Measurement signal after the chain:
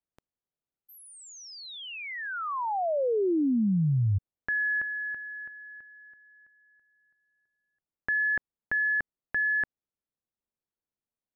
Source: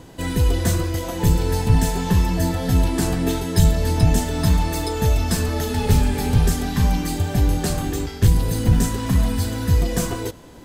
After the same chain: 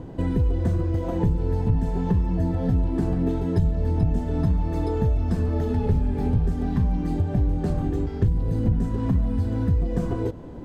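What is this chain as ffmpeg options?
ffmpeg -i in.wav -af "lowpass=frequency=1900:poles=1,tiltshelf=frequency=970:gain=7,acompressor=threshold=-22dB:ratio=3" out.wav

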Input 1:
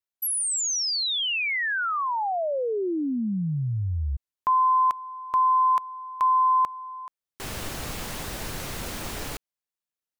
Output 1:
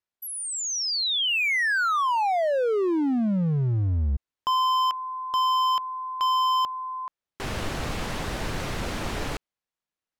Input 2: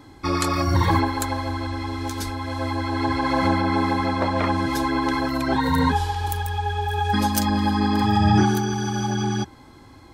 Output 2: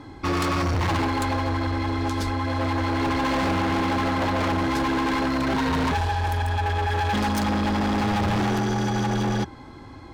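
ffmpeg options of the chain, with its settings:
ffmpeg -i in.wav -af "acontrast=53,aemphasis=mode=reproduction:type=50fm,asoftclip=type=hard:threshold=-20dB,volume=-1.5dB" out.wav

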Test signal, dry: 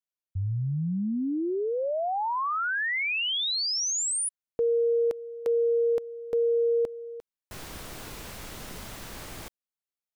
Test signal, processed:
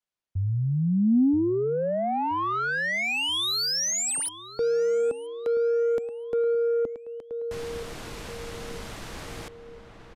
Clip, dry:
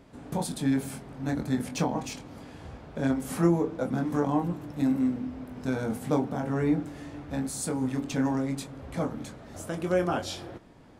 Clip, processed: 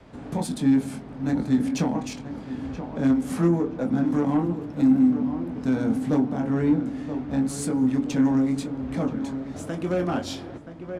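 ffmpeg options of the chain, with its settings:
ffmpeg -i in.wav -filter_complex "[0:a]highshelf=frequency=9000:gain=10.5,asplit=2[link_01][link_02];[link_02]adelay=977,lowpass=frequency=2300:poles=1,volume=-12dB,asplit=2[link_03][link_04];[link_04]adelay=977,lowpass=frequency=2300:poles=1,volume=0.44,asplit=2[link_05][link_06];[link_06]adelay=977,lowpass=frequency=2300:poles=1,volume=0.44,asplit=2[link_07][link_08];[link_08]adelay=977,lowpass=frequency=2300:poles=1,volume=0.44[link_09];[link_01][link_03][link_05][link_07][link_09]amix=inputs=5:normalize=0,asplit=2[link_10][link_11];[link_11]acompressor=threshold=-37dB:ratio=6:attack=0.18:release=934:knee=1:detection=rms,volume=1dB[link_12];[link_10][link_12]amix=inputs=2:normalize=0,adynamicequalizer=threshold=0.0112:dfrequency=250:dqfactor=2:tfrequency=250:tqfactor=2:attack=5:release=100:ratio=0.375:range=3.5:mode=boostabove:tftype=bell,acrossover=split=290[link_13][link_14];[link_14]asoftclip=type=tanh:threshold=-21dB[link_15];[link_13][link_15]amix=inputs=2:normalize=0,adynamicsmooth=sensitivity=5.5:basefreq=4900,aresample=32000,aresample=44100" out.wav

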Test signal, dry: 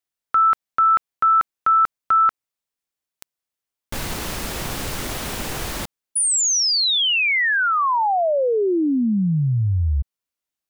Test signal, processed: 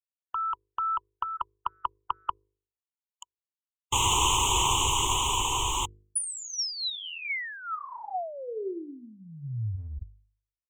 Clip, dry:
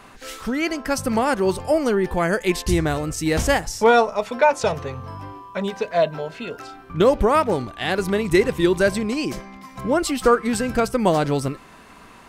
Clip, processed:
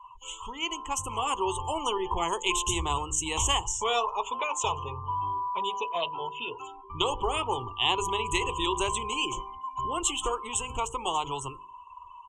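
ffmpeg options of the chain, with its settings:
ffmpeg -i in.wav -filter_complex "[0:a]acrossover=split=110|550|4000[link_01][link_02][link_03][link_04];[link_02]acompressor=threshold=-31dB:ratio=6:attack=51:release=109[link_05];[link_01][link_05][link_03][link_04]amix=inputs=4:normalize=0,firequalizer=gain_entry='entry(100,0);entry(190,-18);entry(380,-1);entry(600,-16);entry(980,14);entry(1500,-21);entry(3000,11);entry(4600,-17);entry(6800,10);entry(9700,-3)':delay=0.05:min_phase=1,afftdn=noise_reduction=28:noise_floor=-40,bandreject=frequency=50.91:width_type=h:width=4,bandreject=frequency=101.82:width_type=h:width=4,bandreject=frequency=152.73:width_type=h:width=4,bandreject=frequency=203.64:width_type=h:width=4,bandreject=frequency=254.55:width_type=h:width=4,bandreject=frequency=305.46:width_type=h:width=4,bandreject=frequency=356.37:width_type=h:width=4,bandreject=frequency=407.28:width_type=h:width=4,bandreject=frequency=458.19:width_type=h:width=4,bandreject=frequency=509.1:width_type=h:width=4,dynaudnorm=framelen=280:gausssize=11:maxgain=11.5dB,afftfilt=real='re*lt(hypot(re,im),1.12)':imag='im*lt(hypot(re,im),1.12)':win_size=1024:overlap=0.75,volume=-6dB" out.wav

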